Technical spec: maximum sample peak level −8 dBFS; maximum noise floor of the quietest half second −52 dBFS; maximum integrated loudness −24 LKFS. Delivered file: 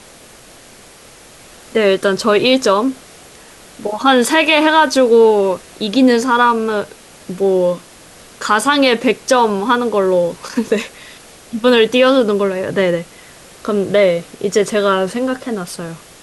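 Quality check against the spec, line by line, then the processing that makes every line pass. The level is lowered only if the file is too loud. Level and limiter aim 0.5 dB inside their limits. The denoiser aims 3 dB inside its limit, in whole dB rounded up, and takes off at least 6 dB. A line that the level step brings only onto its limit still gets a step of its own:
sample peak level −2.0 dBFS: out of spec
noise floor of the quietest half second −41 dBFS: out of spec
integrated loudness −14.5 LKFS: out of spec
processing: broadband denoise 6 dB, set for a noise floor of −41 dBFS
level −10 dB

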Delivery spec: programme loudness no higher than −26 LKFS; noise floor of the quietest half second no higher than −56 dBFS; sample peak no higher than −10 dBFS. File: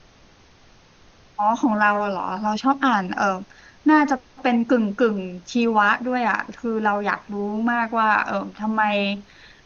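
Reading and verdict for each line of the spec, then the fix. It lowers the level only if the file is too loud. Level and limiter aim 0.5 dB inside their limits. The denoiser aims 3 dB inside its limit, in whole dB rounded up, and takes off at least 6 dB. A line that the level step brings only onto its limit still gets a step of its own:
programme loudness −21.5 LKFS: out of spec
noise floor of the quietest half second −52 dBFS: out of spec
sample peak −5.5 dBFS: out of spec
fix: level −5 dB

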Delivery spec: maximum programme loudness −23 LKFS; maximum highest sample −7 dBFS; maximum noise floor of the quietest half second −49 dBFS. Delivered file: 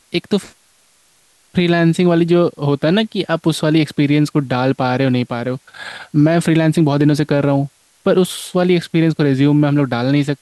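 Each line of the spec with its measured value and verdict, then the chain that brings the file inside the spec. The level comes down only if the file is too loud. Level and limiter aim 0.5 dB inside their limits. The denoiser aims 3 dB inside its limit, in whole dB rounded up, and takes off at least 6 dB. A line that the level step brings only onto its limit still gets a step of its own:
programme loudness −15.5 LKFS: out of spec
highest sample −4.0 dBFS: out of spec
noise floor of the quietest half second −55 dBFS: in spec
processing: level −8 dB

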